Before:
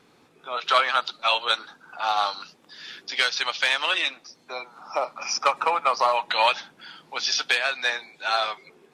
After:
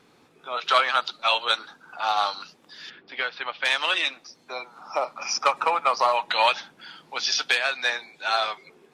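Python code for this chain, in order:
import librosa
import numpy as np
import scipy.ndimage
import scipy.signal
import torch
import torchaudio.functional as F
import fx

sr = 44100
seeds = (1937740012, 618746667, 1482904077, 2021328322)

y = fx.air_absorb(x, sr, metres=470.0, at=(2.89, 3.64), fade=0.02)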